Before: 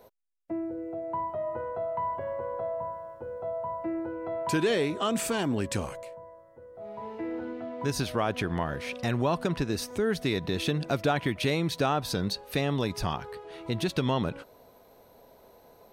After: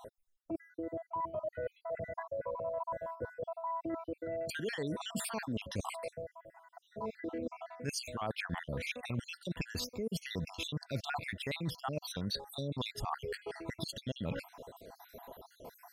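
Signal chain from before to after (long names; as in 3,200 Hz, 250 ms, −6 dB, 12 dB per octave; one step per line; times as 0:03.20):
time-frequency cells dropped at random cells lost 65%
dynamic equaliser 370 Hz, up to −6 dB, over −44 dBFS, Q 2.1
reversed playback
downward compressor 5 to 1, threshold −44 dBFS, peak gain reduction 17 dB
reversed playback
level +8 dB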